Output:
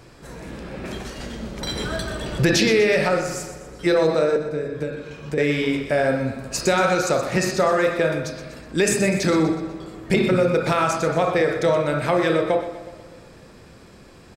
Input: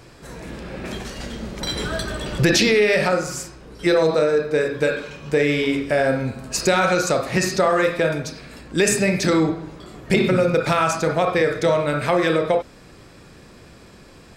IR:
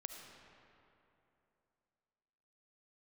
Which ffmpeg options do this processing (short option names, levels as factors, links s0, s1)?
-filter_complex "[0:a]asettb=1/sr,asplit=3[s0][s1][s2];[s0]atrim=end=4.364[s3];[s1]atrim=start=4.36:end=5.38,asetpts=PTS-STARTPTS,afade=t=in:d=0.004:c=qsin,afade=t=out:st=1.016:d=0.004:c=qsin,acrossover=split=350[s4][s5];[s5]acompressor=threshold=0.0251:ratio=6[s6];[s4][s6]amix=inputs=2:normalize=0[s7];[s2]atrim=start=5.376[s8];[s3][s7]acrossfade=d=0.004:c1=hsin:c2=qsin[s9];[s9][s8]acrossfade=d=0.004:c1=qsin:c2=hsin,aecho=1:1:123|246|369|492|615:0.266|0.128|0.0613|0.0294|0.0141,asplit=2[s10][s11];[1:a]atrim=start_sample=2205,lowpass=2200[s12];[s11][s12]afir=irnorm=-1:irlink=0,volume=0.316[s13];[s10][s13]amix=inputs=2:normalize=0,volume=0.75"